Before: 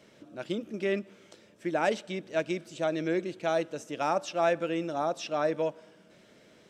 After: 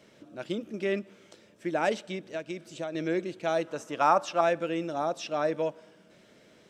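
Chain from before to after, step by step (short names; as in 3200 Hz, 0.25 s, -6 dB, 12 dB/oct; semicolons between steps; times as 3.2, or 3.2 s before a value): 2.15–2.95 compressor 6:1, threshold -32 dBFS, peak gain reduction 9 dB; 3.67–4.41 bell 1100 Hz +10 dB 1.1 oct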